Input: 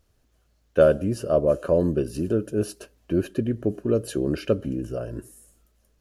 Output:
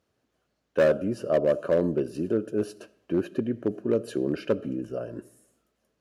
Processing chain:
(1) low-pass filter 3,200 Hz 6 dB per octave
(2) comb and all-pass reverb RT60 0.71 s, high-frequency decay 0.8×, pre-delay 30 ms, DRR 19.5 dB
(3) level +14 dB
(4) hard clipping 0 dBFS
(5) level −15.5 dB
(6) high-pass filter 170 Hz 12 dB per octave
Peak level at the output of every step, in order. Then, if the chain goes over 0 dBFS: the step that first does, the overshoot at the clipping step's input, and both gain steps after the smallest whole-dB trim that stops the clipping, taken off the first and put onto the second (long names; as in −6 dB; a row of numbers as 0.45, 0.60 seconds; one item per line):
−5.5, −5.5, +8.5, 0.0, −15.5, −11.0 dBFS
step 3, 8.5 dB
step 3 +5 dB, step 5 −6.5 dB